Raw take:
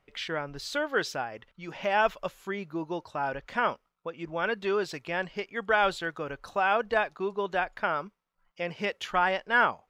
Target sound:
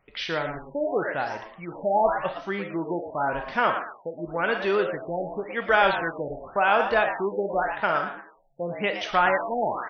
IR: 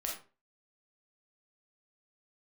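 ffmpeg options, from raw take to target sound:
-filter_complex "[0:a]asplit=5[link_01][link_02][link_03][link_04][link_05];[link_02]adelay=114,afreqshift=120,volume=-9dB[link_06];[link_03]adelay=228,afreqshift=240,volume=-18.9dB[link_07];[link_04]adelay=342,afreqshift=360,volume=-28.8dB[link_08];[link_05]adelay=456,afreqshift=480,volume=-38.7dB[link_09];[link_01][link_06][link_07][link_08][link_09]amix=inputs=5:normalize=0,asplit=2[link_10][link_11];[1:a]atrim=start_sample=2205[link_12];[link_11][link_12]afir=irnorm=-1:irlink=0,volume=-3dB[link_13];[link_10][link_13]amix=inputs=2:normalize=0,afftfilt=real='re*lt(b*sr/1024,860*pow(6400/860,0.5+0.5*sin(2*PI*0.91*pts/sr)))':imag='im*lt(b*sr/1024,860*pow(6400/860,0.5+0.5*sin(2*PI*0.91*pts/sr)))':win_size=1024:overlap=0.75"

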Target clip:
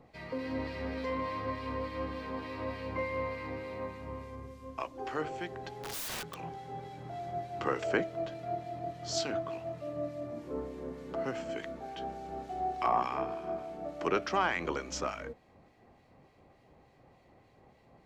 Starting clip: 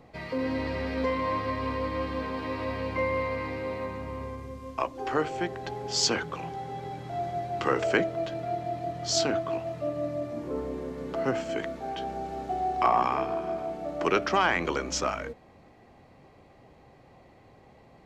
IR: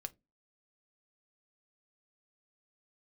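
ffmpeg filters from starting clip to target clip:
-filter_complex "[0:a]acrossover=split=1800[link_01][link_02];[link_01]aeval=exprs='val(0)*(1-0.5/2+0.5/2*cos(2*PI*3.4*n/s))':channel_layout=same[link_03];[link_02]aeval=exprs='val(0)*(1-0.5/2-0.5/2*cos(2*PI*3.4*n/s))':channel_layout=same[link_04];[link_03][link_04]amix=inputs=2:normalize=0,asettb=1/sr,asplit=3[link_05][link_06][link_07];[link_05]atrim=end=5.794[link_08];[link_06]atrim=start=5.79:end=6.37,asetpts=PTS-STARTPTS,afade=type=in:duration=0.004:curve=qsin,afade=type=out:start_time=0.576:duration=0.004:curve=qsin,aeval=exprs='(mod(29.9*val(0)+1,2)-1)/29.9':channel_layout=same[link_09];[link_07]atrim=start=6.366[link_10];[link_08][link_09]acrossfade=duration=0.004:curve1=hsin:curve2=qsin[link_11];[link_11][link_10]acrossfade=duration=0.004:curve1=qsin:curve2=hsin,volume=-4dB"

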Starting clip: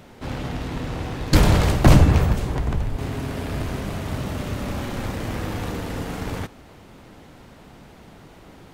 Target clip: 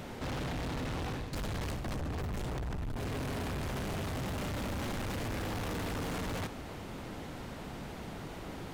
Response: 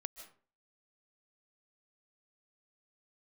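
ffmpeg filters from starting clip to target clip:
-af "areverse,acompressor=threshold=-27dB:ratio=12,areverse,asoftclip=type=hard:threshold=-37.5dB,volume=3dB"

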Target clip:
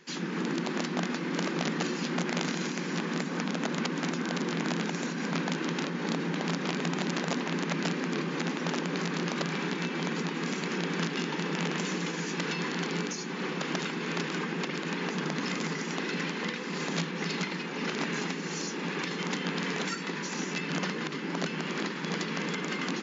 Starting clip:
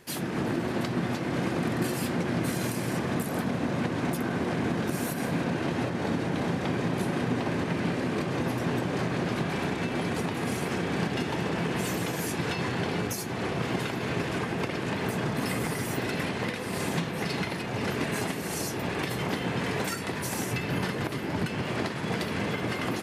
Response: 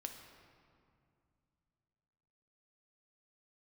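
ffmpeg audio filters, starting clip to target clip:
-af "aeval=exprs='0.178*(cos(1*acos(clip(val(0)/0.178,-1,1)))-cos(1*PI/2))+0.00141*(cos(6*acos(clip(val(0)/0.178,-1,1)))-cos(6*PI/2))':channel_layout=same,equalizer=frequency=660:width=3:gain=-14,bandreject=frequency=50:width_type=h:width=6,bandreject=frequency=100:width_type=h:width=6,bandreject=frequency=150:width_type=h:width=6,bandreject=frequency=200:width_type=h:width=6,bandreject=frequency=250:width_type=h:width=6,bandreject=frequency=300:width_type=h:width=6,bandreject=frequency=350:width_type=h:width=6,bandreject=frequency=400:width_type=h:width=6,bandreject=frequency=450:width_type=h:width=6,aeval=exprs='(mod(11.9*val(0)+1,2)-1)/11.9':channel_layout=same,afftfilt=real='re*between(b*sr/4096,140,7300)':imag='im*between(b*sr/4096,140,7300)':win_size=4096:overlap=0.75"

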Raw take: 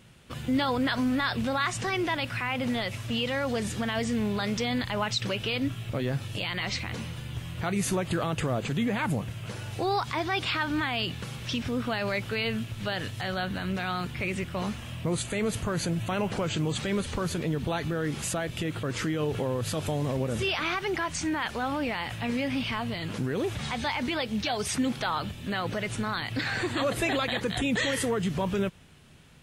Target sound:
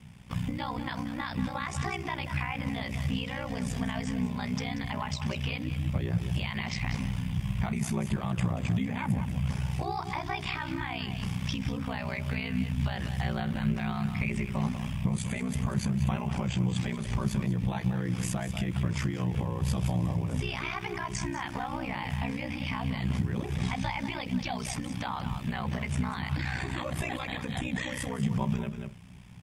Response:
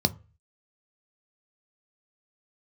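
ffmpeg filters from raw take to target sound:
-filter_complex "[0:a]aecho=1:1:188:0.266,acompressor=threshold=-30dB:ratio=6,asplit=2[link_01][link_02];[1:a]atrim=start_sample=2205,lowpass=2800[link_03];[link_02][link_03]afir=irnorm=-1:irlink=0,volume=-11.5dB[link_04];[link_01][link_04]amix=inputs=2:normalize=0,aeval=exprs='val(0)*sin(2*PI*31*n/s)':channel_layout=same"

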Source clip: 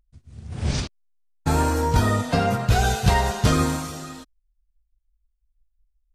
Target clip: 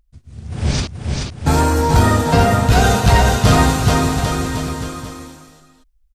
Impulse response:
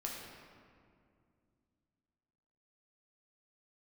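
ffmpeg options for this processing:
-af "aecho=1:1:430|795.5|1106|1370|1595:0.631|0.398|0.251|0.158|0.1,acontrast=70"

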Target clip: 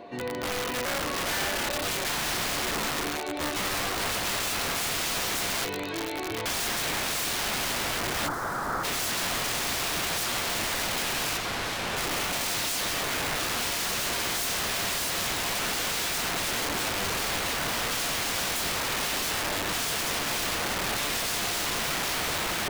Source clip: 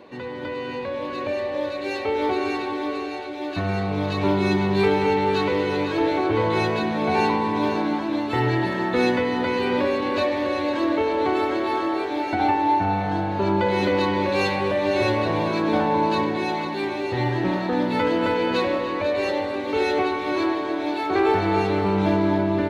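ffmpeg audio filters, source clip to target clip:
ffmpeg -i in.wav -filter_complex "[0:a]asettb=1/sr,asplit=3[link_01][link_02][link_03];[link_01]atrim=end=5.644[link_04];[link_02]atrim=start=5.64:end=6.46,asetpts=PTS-STARTPTS,afade=type=in:duration=0.004:curve=qsin,afade=type=out:start_time=0.816:duration=0.004:curve=qsin,acrossover=split=2000|4300[link_05][link_06][link_07];[link_05]acompressor=threshold=-33dB:ratio=4[link_08];[link_06]acompressor=threshold=-38dB:ratio=4[link_09];[link_07]acompressor=threshold=-55dB:ratio=4[link_10];[link_08][link_09][link_10]amix=inputs=3:normalize=0[link_11];[link_03]atrim=start=6.456[link_12];[link_04][link_11]acrossfade=duration=0.004:curve1=hsin:curve2=qsin[link_13];[link_13][link_12]acrossfade=duration=0.004:curve1=qsin:curve2=hsin,aeval=exprs='(mod(16.8*val(0)+1,2)-1)/16.8':channel_layout=same,asettb=1/sr,asplit=3[link_14][link_15][link_16];[link_14]atrim=end=11.374[link_17];[link_15]atrim=start=11.37:end=11.97,asetpts=PTS-STARTPTS,afade=type=in:duration=0.004:curve=qsin,afade=type=out:start_time=0.596:duration=0.004:curve=qsin,aemphasis=mode=reproduction:type=cd[link_18];[link_16]atrim=start=11.966[link_19];[link_17][link_18]acrossfade=duration=0.004:curve1=hsin:curve2=qsin[link_20];[link_20][link_19]acrossfade=duration=0.004:curve1=qsin:curve2=hsin,aeval=exprs='val(0)+0.00501*sin(2*PI*700*n/s)':channel_layout=same,asplit=3[link_21][link_22][link_23];[link_21]afade=type=out:start_time=8.27:duration=0.02[link_24];[link_22]highshelf=frequency=1900:width_type=q:width=3:gain=-12,afade=type=in:start_time=8.27:duration=0.02,afade=type=out:start_time=8.83:duration=0.02[link_25];[link_23]afade=type=in:start_time=8.83:duration=0.02[link_26];[link_24][link_25][link_26]amix=inputs=3:normalize=0" out.wav

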